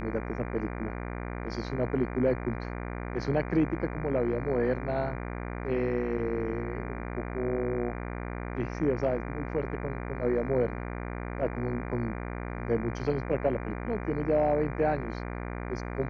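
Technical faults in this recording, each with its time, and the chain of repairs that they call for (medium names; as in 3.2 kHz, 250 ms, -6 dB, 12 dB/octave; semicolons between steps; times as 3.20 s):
buzz 60 Hz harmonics 40 -36 dBFS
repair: de-hum 60 Hz, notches 40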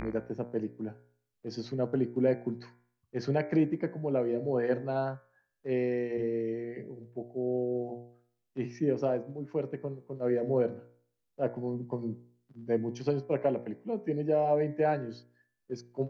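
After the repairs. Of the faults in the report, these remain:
nothing left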